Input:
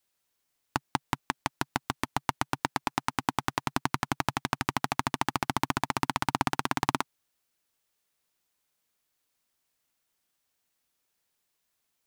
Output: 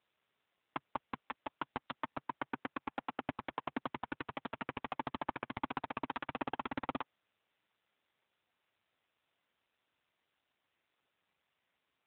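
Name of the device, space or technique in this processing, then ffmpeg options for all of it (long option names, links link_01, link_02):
telephone: -filter_complex "[0:a]asplit=3[link_01][link_02][link_03];[link_01]afade=type=out:start_time=1.91:duration=0.02[link_04];[link_02]aemphasis=mode=reproduction:type=50kf,afade=type=in:start_time=1.91:duration=0.02,afade=type=out:start_time=3.79:duration=0.02[link_05];[link_03]afade=type=in:start_time=3.79:duration=0.02[link_06];[link_04][link_05][link_06]amix=inputs=3:normalize=0,highpass=300,lowpass=3200,volume=5.5dB" -ar 8000 -c:a libopencore_amrnb -b:a 7400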